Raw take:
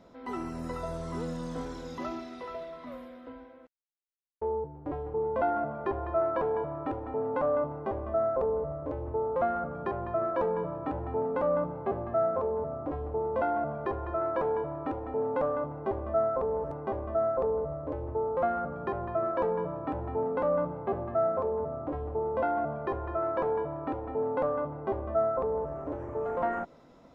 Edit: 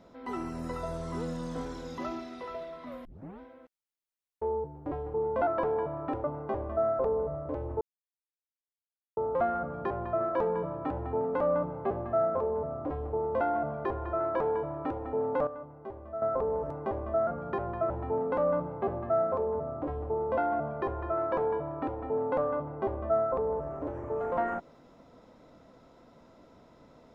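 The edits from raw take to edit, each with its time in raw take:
3.05 tape start 0.35 s
5.47–6.25 cut
7.02–7.61 cut
9.18 insert silence 1.36 s
15.48–16.23 gain -10.5 dB
17.28–18.61 cut
19.24–19.95 cut

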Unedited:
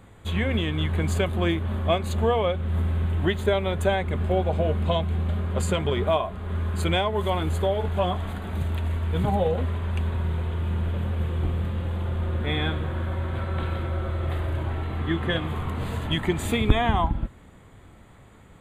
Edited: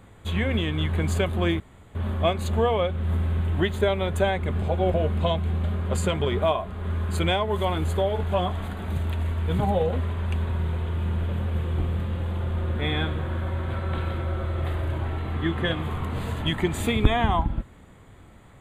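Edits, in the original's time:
1.6 insert room tone 0.35 s
4.27–4.59 reverse

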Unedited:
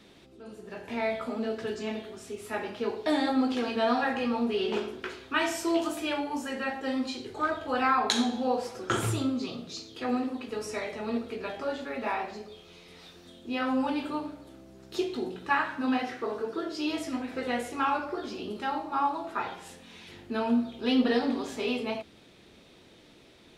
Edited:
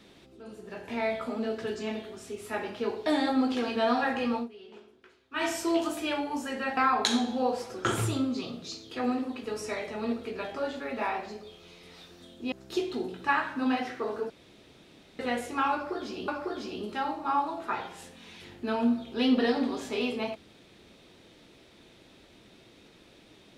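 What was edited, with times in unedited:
4.35–5.45 dip -20 dB, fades 0.14 s
6.77–7.82 cut
13.57–14.74 cut
16.52–17.41 room tone
17.95–18.5 loop, 2 plays

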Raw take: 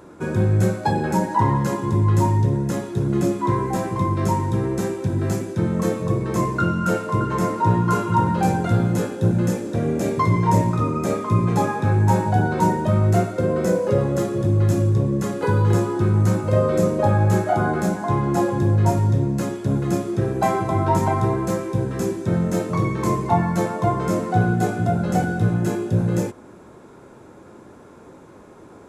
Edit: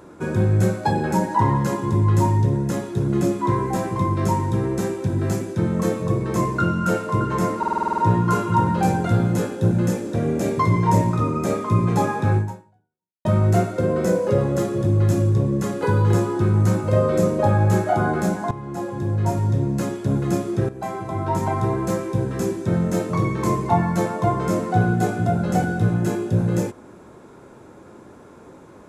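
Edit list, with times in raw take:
7.58 stutter 0.05 s, 9 plays
11.97–12.85 fade out exponential
18.11–19.4 fade in, from -14.5 dB
20.29–21.51 fade in, from -12.5 dB

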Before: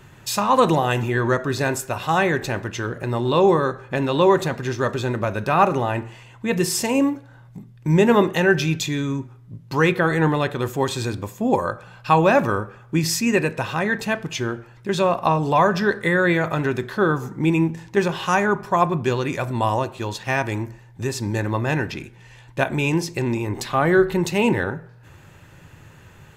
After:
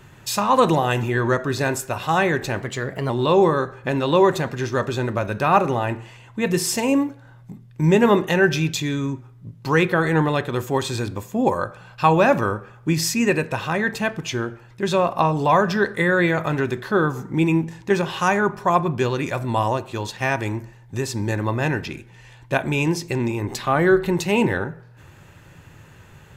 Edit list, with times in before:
2.61–3.16 speed 113%

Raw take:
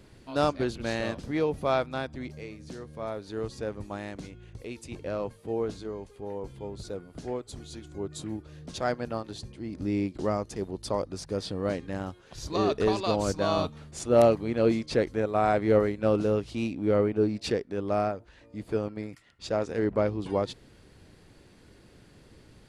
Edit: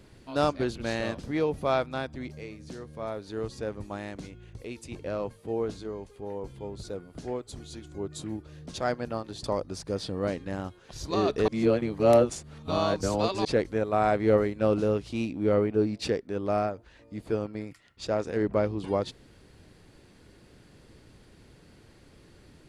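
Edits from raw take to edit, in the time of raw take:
9.44–10.86 cut
12.9–14.87 reverse

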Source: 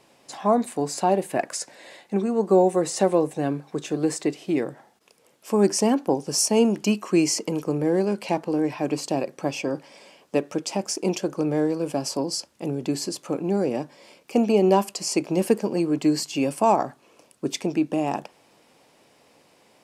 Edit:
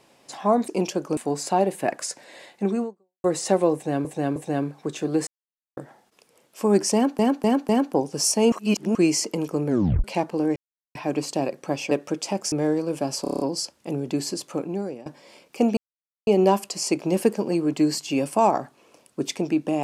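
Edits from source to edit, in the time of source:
2.34–2.75 fade out exponential
3.25–3.56 loop, 3 plays
4.16–4.66 mute
5.83–6.08 loop, 4 plays
6.66–7.09 reverse
7.81 tape stop 0.37 s
8.7 insert silence 0.39 s
9.66–10.35 cut
10.96–11.45 move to 0.68
12.15 stutter 0.03 s, 7 plays
13.27–13.81 fade out, to -21 dB
14.52 insert silence 0.50 s

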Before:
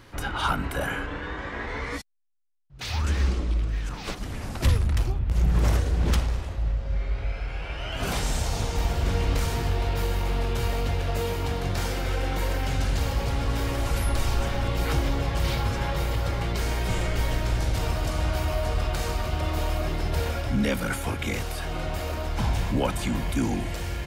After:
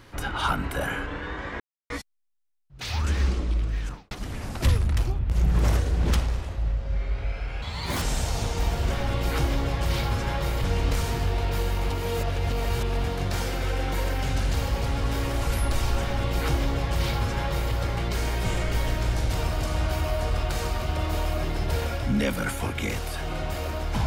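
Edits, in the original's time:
1.6–1.9 mute
3.84–4.11 studio fade out
7.62–8.2 speed 145%
10.34–11.48 reverse
14.44–16.18 copy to 9.08

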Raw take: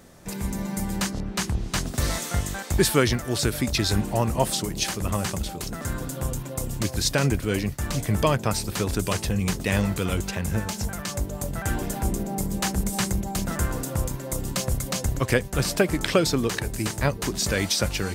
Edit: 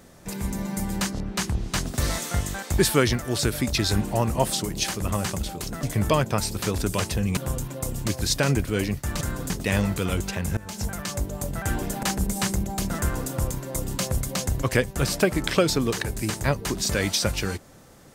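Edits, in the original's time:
5.83–6.12 swap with 7.96–9.5
10.57–10.84 fade in, from -21.5 dB
12.03–12.6 cut

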